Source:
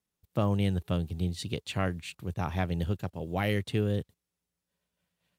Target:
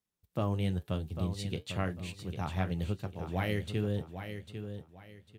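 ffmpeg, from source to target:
-filter_complex "[0:a]flanger=delay=8.5:depth=4.5:regen=-62:speed=0.99:shape=triangular,asplit=2[s0][s1];[s1]aecho=0:1:799|1598|2397:0.355|0.0993|0.0278[s2];[s0][s2]amix=inputs=2:normalize=0"

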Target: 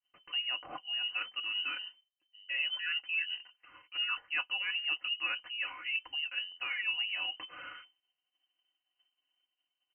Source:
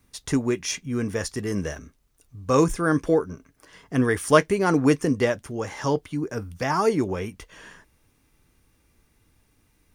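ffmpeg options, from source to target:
-af "agate=range=0.0224:threshold=0.00355:ratio=3:detection=peak,aecho=1:1:4.3:0.79,areverse,acompressor=threshold=0.0251:ratio=4,areverse,lowpass=f=2600:t=q:w=0.5098,lowpass=f=2600:t=q:w=0.6013,lowpass=f=2600:t=q:w=0.9,lowpass=f=2600:t=q:w=2.563,afreqshift=-3100,volume=0.75"

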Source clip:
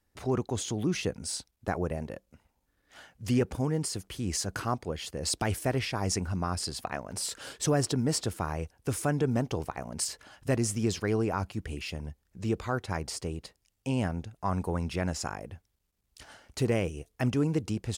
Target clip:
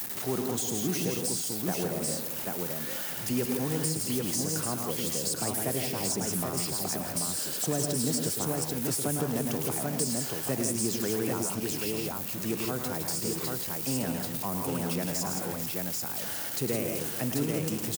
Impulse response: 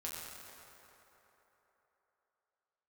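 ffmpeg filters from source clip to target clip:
-filter_complex "[0:a]aeval=exprs='val(0)+0.5*0.0188*sgn(val(0))':c=same,aemphasis=mode=production:type=50fm,aecho=1:1:106|157|169|434|786:0.398|0.355|0.355|0.141|0.631,acrossover=split=250|690|6100[s0][s1][s2][s3];[s0]acompressor=threshold=0.0398:ratio=4[s4];[s1]acompressor=threshold=0.0398:ratio=4[s5];[s2]acompressor=threshold=0.0126:ratio=4[s6];[s3]acompressor=threshold=0.0316:ratio=4[s7];[s4][s5][s6][s7]amix=inputs=4:normalize=0,acrusher=bits=4:mode=log:mix=0:aa=0.000001,highpass=f=130:w=0.5412,highpass=f=130:w=1.3066,volume=0.794"

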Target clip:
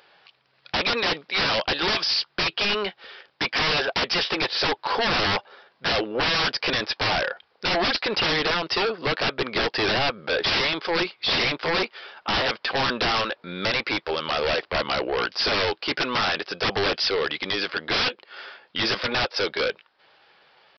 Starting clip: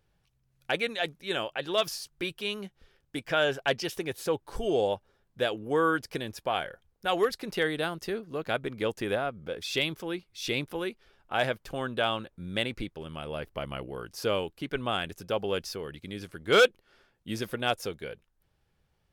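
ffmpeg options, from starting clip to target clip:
-af "highpass=650,alimiter=limit=0.0891:level=0:latency=1:release=260,aresample=11025,aeval=exprs='0.0944*sin(PI/2*8.91*val(0)/0.0944)':c=same,aresample=44100,atempo=0.92,volume=1.19"

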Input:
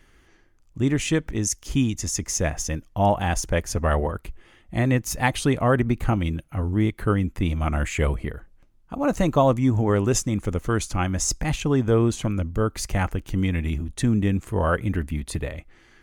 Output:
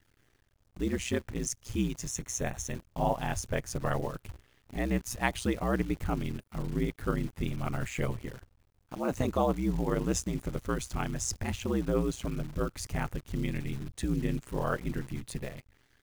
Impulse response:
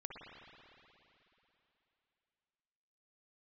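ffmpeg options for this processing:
-filter_complex "[0:a]aeval=exprs='val(0)*sin(2*PI*62*n/s)':c=same,acrusher=bits=8:dc=4:mix=0:aa=0.000001,asettb=1/sr,asplit=3[s0][s1][s2];[s0]atrim=end=2.094[s3];[s1]atrim=start=2.09:end=2.75,asetpts=PTS-STARTPTS,afade=t=in:d=0.004:c=qsin,afade=t=out:st=0.656:d=0.004:c=qsin,asuperstop=centerf=4900:order=8:qfactor=5.7[s4];[s2]atrim=start=2.746[s5];[s3][s4]acrossfade=d=0.004:c1=hsin:c2=qsin[s6];[s6][s5]acrossfade=d=0.004:c1=qsin:c2=hsin,volume=0.501"

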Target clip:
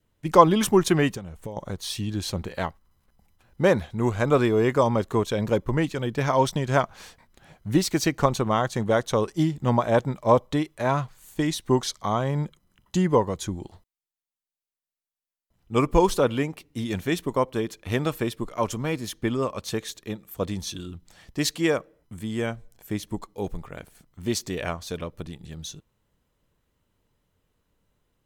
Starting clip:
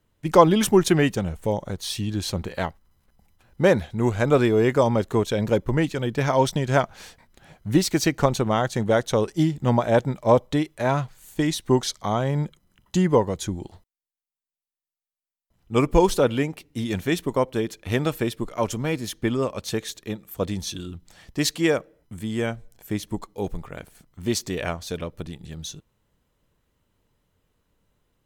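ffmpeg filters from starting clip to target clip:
-filter_complex "[0:a]adynamicequalizer=threshold=0.01:dfrequency=1100:dqfactor=4.3:tfrequency=1100:tqfactor=4.3:attack=5:release=100:ratio=0.375:range=3:mode=boostabove:tftype=bell,asettb=1/sr,asplit=3[s0][s1][s2];[s0]atrim=end=1.144[s3];[s1]atrim=start=1.14:end=1.57,asetpts=PTS-STARTPTS,afade=t=in:d=0.004:c=qsin,afade=t=out:st=0.426:d=0.004:c=qsin,acompressor=threshold=0.0316:ratio=16[s4];[s2]atrim=start=1.566[s5];[s3][s4]acrossfade=d=0.004:c1=hsin:c2=qsin[s6];[s6][s5]acrossfade=d=0.004:c1=qsin:c2=hsin,volume=0.794"

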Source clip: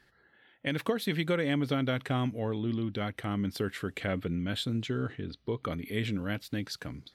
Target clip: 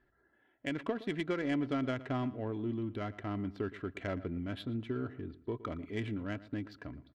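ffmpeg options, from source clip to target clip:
-filter_complex "[0:a]aecho=1:1:3:0.46,adynamicsmooth=sensitivity=2:basefreq=1500,asplit=2[s0][s1];[s1]adelay=116,lowpass=f=3000:p=1,volume=0.141,asplit=2[s2][s3];[s3]adelay=116,lowpass=f=3000:p=1,volume=0.29,asplit=2[s4][s5];[s5]adelay=116,lowpass=f=3000:p=1,volume=0.29[s6];[s2][s4][s6]amix=inputs=3:normalize=0[s7];[s0][s7]amix=inputs=2:normalize=0,volume=0.596"

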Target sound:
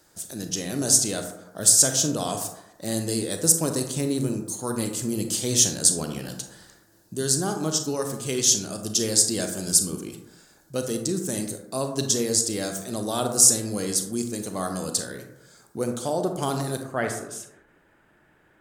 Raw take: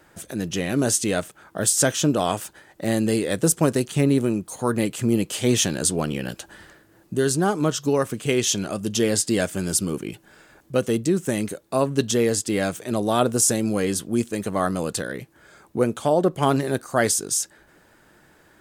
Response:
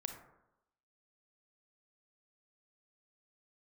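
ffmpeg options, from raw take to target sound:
-filter_complex "[0:a]asetnsamples=n=441:p=0,asendcmd='16.83 highshelf g -6.5',highshelf=f=3500:t=q:w=1.5:g=10[s0];[1:a]atrim=start_sample=2205[s1];[s0][s1]afir=irnorm=-1:irlink=0,volume=0.596"

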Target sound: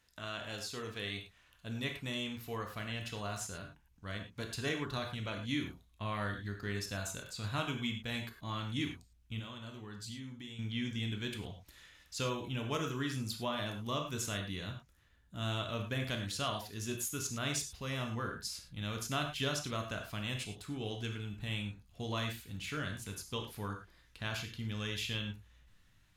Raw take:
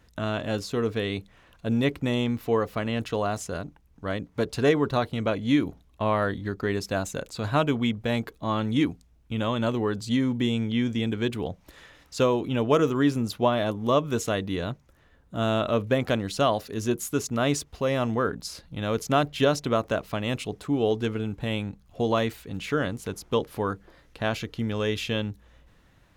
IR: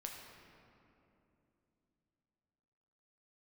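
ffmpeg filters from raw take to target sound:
-filter_complex "[0:a]asubboost=boost=3.5:cutoff=240,asettb=1/sr,asplit=3[s0][s1][s2];[s0]atrim=end=9.394[s3];[s1]atrim=start=9.39:end=10.59,asetpts=PTS-STARTPTS,afade=t=in:d=0.004:c=qsin,afade=t=out:st=1.196:d=0.004:c=qsin,acompressor=threshold=0.0501:ratio=6[s4];[s2]atrim=start=10.586[s5];[s3][s4]acrossfade=d=0.004:c1=hsin:c2=qsin[s6];[s6][s5]acrossfade=d=0.004:c1=qsin:c2=hsin,tiltshelf=f=1200:g=-8[s7];[1:a]atrim=start_sample=2205,atrim=end_sample=3528,asetrate=29988,aresample=44100[s8];[s7][s8]afir=irnorm=-1:irlink=0,volume=0.376"

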